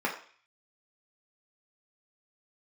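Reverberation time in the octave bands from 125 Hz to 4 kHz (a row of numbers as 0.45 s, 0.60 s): 0.35 s, 0.40 s, 0.40 s, 0.50 s, 0.55 s, 0.55 s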